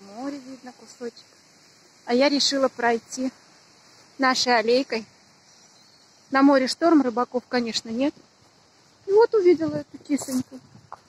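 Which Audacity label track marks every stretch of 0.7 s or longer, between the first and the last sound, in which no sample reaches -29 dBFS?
1.090000	2.090000	silence
3.290000	4.200000	silence
5.000000	6.330000	silence
8.100000	9.080000	silence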